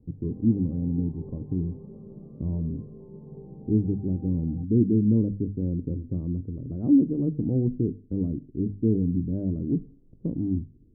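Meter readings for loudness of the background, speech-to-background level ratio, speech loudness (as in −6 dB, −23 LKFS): −45.5 LKFS, 18.5 dB, −27.0 LKFS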